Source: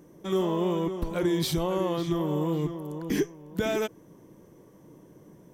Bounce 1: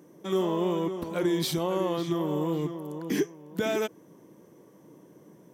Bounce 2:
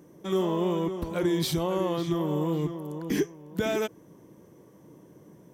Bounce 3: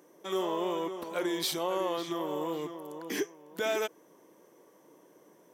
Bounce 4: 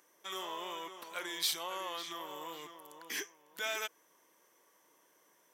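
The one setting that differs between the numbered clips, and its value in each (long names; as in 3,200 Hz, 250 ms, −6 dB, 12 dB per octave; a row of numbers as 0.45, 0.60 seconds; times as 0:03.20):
high-pass filter, corner frequency: 160, 59, 470, 1,300 Hertz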